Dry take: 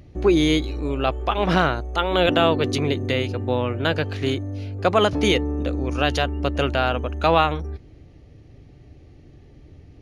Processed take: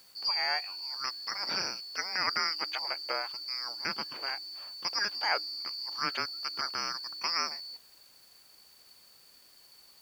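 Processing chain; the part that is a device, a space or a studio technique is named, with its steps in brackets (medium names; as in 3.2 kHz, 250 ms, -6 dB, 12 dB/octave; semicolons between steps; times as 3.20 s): split-band scrambled radio (four frequency bands reordered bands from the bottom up 2341; band-pass 330–2800 Hz; white noise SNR 26 dB); trim -5 dB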